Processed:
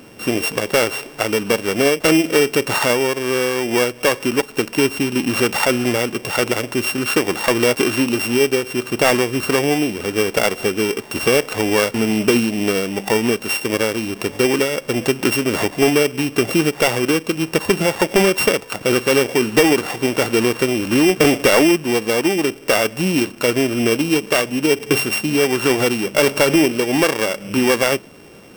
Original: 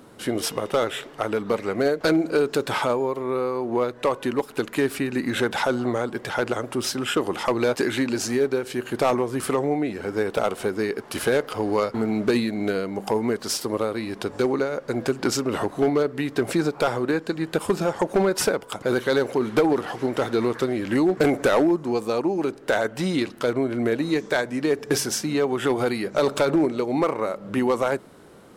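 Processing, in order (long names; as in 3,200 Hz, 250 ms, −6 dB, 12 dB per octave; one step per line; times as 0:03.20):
samples sorted by size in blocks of 16 samples
level +6 dB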